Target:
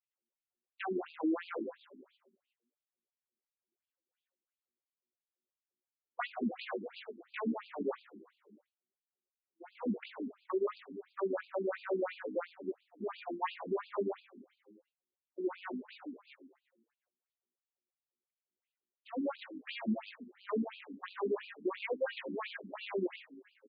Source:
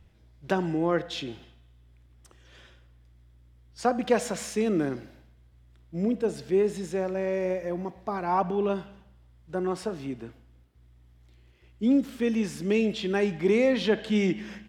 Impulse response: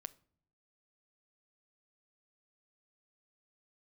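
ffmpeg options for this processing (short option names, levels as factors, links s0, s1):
-filter_complex "[0:a]aeval=exprs='val(0)+0.5*0.0178*sgn(val(0))':c=same,agate=range=0.00141:threshold=0.0447:ratio=16:detection=peak,equalizer=f=430:t=o:w=0.46:g=4,aecho=1:1:5.5:0.8,adynamicequalizer=threshold=0.00631:dfrequency=1100:dqfactor=3.4:tfrequency=1100:tqfactor=3.4:attack=5:release=100:ratio=0.375:range=2.5:mode=cutabove:tftype=bell,acrossover=split=490|2900[s0][s1][s2];[s0]alimiter=limit=0.141:level=0:latency=1:release=152[s3];[s3][s1][s2]amix=inputs=3:normalize=0,acompressor=threshold=0.0501:ratio=16,atempo=0.62,asplit=7[s4][s5][s6][s7][s8][s9][s10];[s5]adelay=120,afreqshift=-120,volume=0.178[s11];[s6]adelay=240,afreqshift=-240,volume=0.108[s12];[s7]adelay=360,afreqshift=-360,volume=0.0661[s13];[s8]adelay=480,afreqshift=-480,volume=0.0403[s14];[s9]adelay=600,afreqshift=-600,volume=0.0245[s15];[s10]adelay=720,afreqshift=-720,volume=0.015[s16];[s4][s11][s12][s13][s14][s15][s16]amix=inputs=7:normalize=0,asplit=2[s17][s18];[s18]aeval=exprs='0.126*sin(PI/2*3.98*val(0)/0.126)':c=same,volume=0.376[s19];[s17][s19]amix=inputs=2:normalize=0,afftfilt=real='re*between(b*sr/1024,260*pow(3500/260,0.5+0.5*sin(2*PI*2.9*pts/sr))/1.41,260*pow(3500/260,0.5+0.5*sin(2*PI*2.9*pts/sr))*1.41)':imag='im*between(b*sr/1024,260*pow(3500/260,0.5+0.5*sin(2*PI*2.9*pts/sr))/1.41,260*pow(3500/260,0.5+0.5*sin(2*PI*2.9*pts/sr))*1.41)':win_size=1024:overlap=0.75,volume=0.596"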